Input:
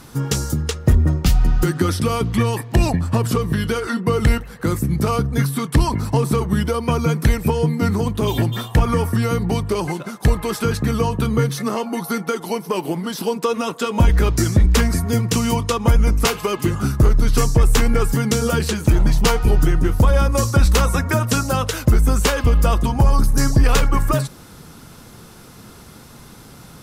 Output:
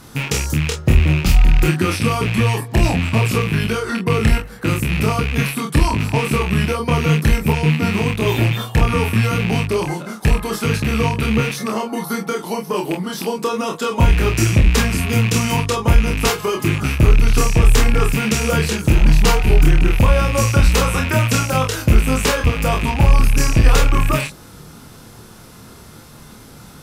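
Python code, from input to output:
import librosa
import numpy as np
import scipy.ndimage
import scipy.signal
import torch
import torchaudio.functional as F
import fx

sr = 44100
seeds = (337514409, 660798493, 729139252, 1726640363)

p1 = fx.rattle_buzz(x, sr, strikes_db=-21.0, level_db=-13.0)
p2 = p1 + fx.room_early_taps(p1, sr, ms=(27, 46), db=(-3.0, -8.0), dry=0)
y = p2 * librosa.db_to_amplitude(-1.0)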